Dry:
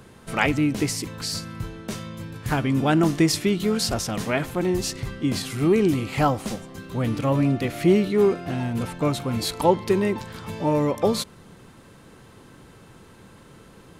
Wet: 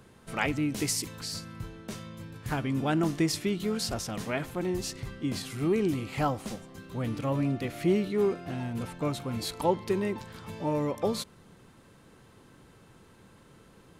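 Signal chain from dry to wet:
0:00.72–0:01.20: high-shelf EQ 3,500 Hz +9 dB
level −7.5 dB

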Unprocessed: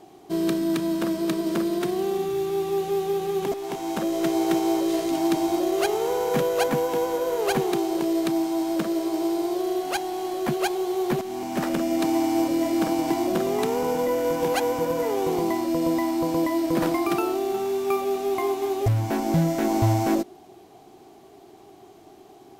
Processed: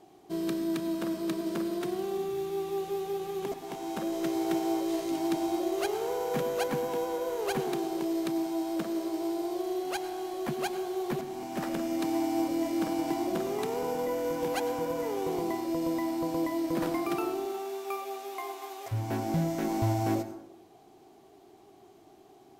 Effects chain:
0:17.45–0:18.91: high-pass filter 390 Hz → 810 Hz 12 dB per octave
convolution reverb RT60 0.80 s, pre-delay 82 ms, DRR 11.5 dB
level −7.5 dB

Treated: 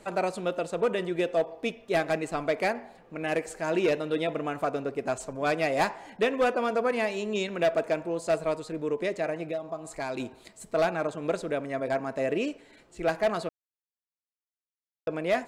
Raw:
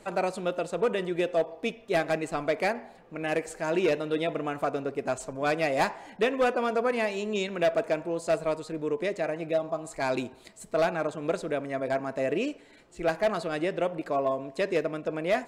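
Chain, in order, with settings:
0:09.42–0:10.20: downward compressor 2.5 to 1, threshold −32 dBFS, peak gain reduction 7.5 dB
0:13.49–0:15.07: silence

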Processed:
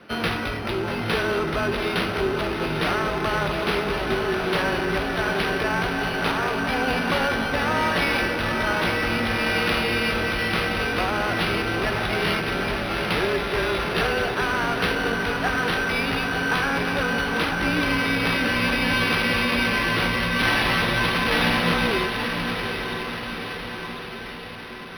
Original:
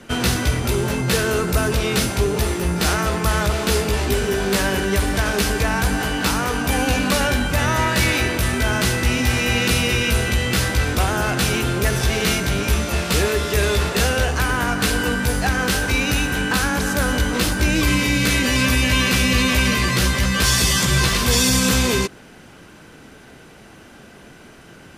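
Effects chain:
high-pass filter 330 Hz 6 dB per octave
frequency shifter −18 Hz
feedback delay with all-pass diffusion 868 ms, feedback 61%, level −6 dB
linearly interpolated sample-rate reduction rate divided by 6×
level −1.5 dB

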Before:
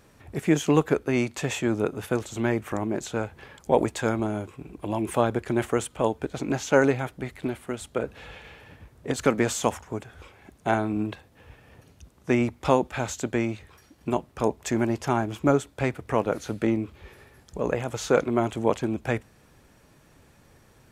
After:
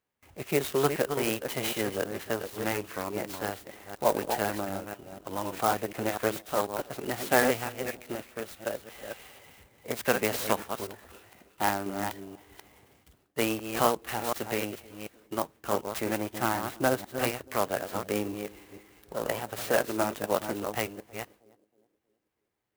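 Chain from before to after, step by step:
delay that plays each chunk backwards 227 ms, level −6.5 dB
noise gate with hold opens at −42 dBFS
spectral tilt +2.5 dB per octave
in parallel at −7 dB: dead-zone distortion −32 dBFS
on the sum: high-frequency loss of the air 100 metres
formants moved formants +4 semitones
on a send: feedback echo with a band-pass in the loop 291 ms, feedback 44%, band-pass 350 Hz, level −20.5 dB
on the sum: wrong playback speed 48 kHz file played as 44.1 kHz
converter with an unsteady clock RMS 0.05 ms
level −4.5 dB

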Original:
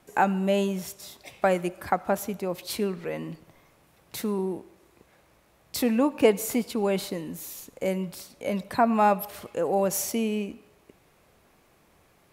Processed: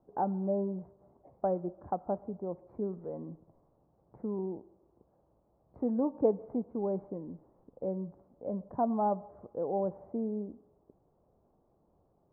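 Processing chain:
adaptive Wiener filter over 9 samples
inverse Chebyshev low-pass filter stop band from 3,000 Hz, stop band 60 dB
level −7 dB

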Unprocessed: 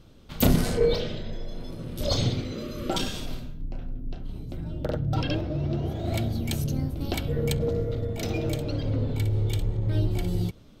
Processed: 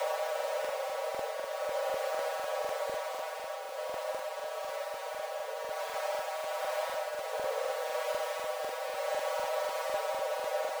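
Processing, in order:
samples sorted by size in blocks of 256 samples
parametric band 120 Hz +11 dB 0.24 octaves
brickwall limiter −18.5 dBFS, peak gain reduction 11 dB
extreme stretch with random phases 20×, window 0.05 s, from 0:05.75
frequency shifter +440 Hz
regular buffer underruns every 0.25 s, samples 2,048, repeat, from 0:00.35
level −7.5 dB

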